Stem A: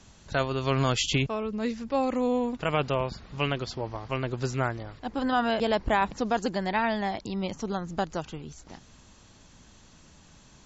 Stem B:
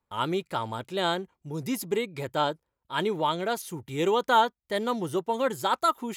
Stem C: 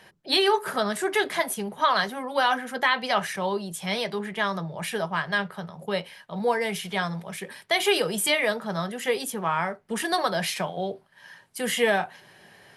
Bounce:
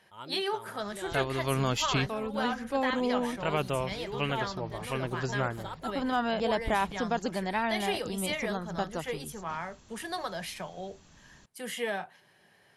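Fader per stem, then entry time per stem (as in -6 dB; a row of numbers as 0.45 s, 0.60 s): -3.5 dB, -16.0 dB, -10.5 dB; 0.80 s, 0.00 s, 0.00 s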